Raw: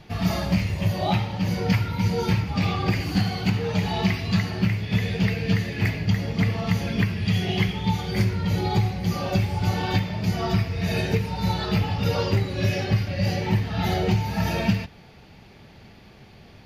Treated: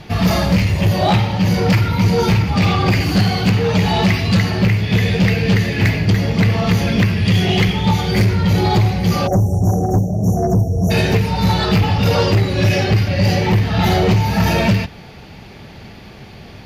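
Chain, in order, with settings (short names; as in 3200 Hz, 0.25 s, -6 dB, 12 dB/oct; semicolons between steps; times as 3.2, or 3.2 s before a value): spectral delete 9.27–10.91, 820–5500 Hz; added harmonics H 5 -11 dB, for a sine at -8.5 dBFS; gain +3.5 dB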